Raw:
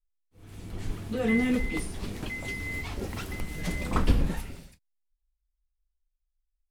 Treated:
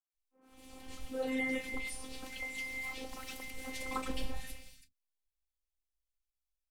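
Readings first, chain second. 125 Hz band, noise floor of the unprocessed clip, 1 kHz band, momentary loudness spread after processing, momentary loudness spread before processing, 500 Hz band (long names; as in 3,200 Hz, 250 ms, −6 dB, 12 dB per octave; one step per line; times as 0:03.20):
−21.0 dB, −81 dBFS, −6.0 dB, 18 LU, 16 LU, −7.0 dB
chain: low-shelf EQ 440 Hz −9 dB
phases set to zero 261 Hz
in parallel at −5.5 dB: soft clipping −23 dBFS, distortion −16 dB
on the sum: three-band delay without the direct sound mids, highs, lows 100/140 ms, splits 190/1,600 Hz
level −4 dB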